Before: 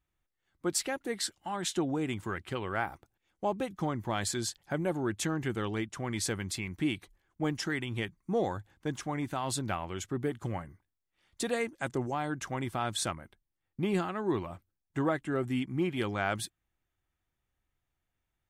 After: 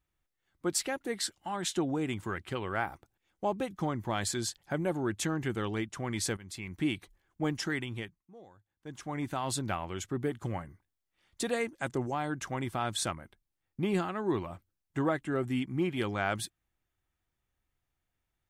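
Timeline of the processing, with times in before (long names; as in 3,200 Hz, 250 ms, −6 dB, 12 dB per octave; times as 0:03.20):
0:06.37–0:06.83: fade in, from −17 dB
0:07.78–0:09.25: duck −23 dB, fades 0.49 s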